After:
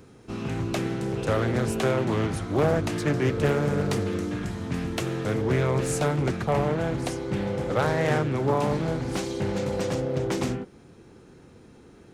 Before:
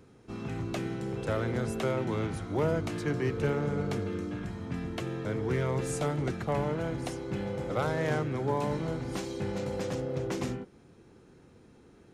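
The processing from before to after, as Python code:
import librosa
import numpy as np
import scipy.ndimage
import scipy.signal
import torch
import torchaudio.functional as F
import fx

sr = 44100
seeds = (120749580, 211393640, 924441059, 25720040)

y = fx.high_shelf(x, sr, hz=5300.0, db=fx.steps((0.0, 5.0), (3.45, 11.0), (5.41, 2.5)))
y = fx.doppler_dist(y, sr, depth_ms=0.39)
y = F.gain(torch.from_numpy(y), 6.0).numpy()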